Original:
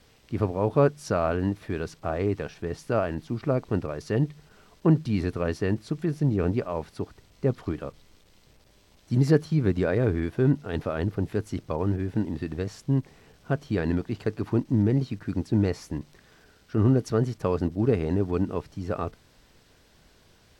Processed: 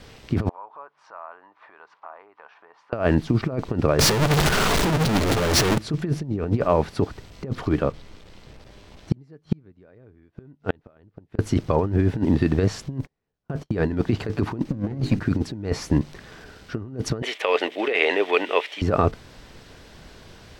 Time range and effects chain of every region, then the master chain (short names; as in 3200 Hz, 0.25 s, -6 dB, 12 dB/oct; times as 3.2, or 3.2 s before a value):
0.49–2.93 compressor 4:1, threshold -37 dBFS + ladder band-pass 1100 Hz, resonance 60%
3.99–5.78 infinite clipping + notches 50/100/150/200/250/300/350 Hz
7.8–11.39 flipped gate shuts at -20 dBFS, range -40 dB + high shelf 5500 Hz -7 dB
12.98–13.94 gate -43 dBFS, range -40 dB + bell 3000 Hz -3.5 dB 1.7 oct
14.68–15.2 minimum comb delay 0.45 ms + notches 50/100/150/200/250/300/350/400/450 Hz
17.22–18.82 HPF 470 Hz 24 dB/oct + band shelf 2600 Hz +14.5 dB 1.2 oct
whole clip: high shelf 7400 Hz -10 dB; negative-ratio compressor -29 dBFS, ratio -0.5; gain +9 dB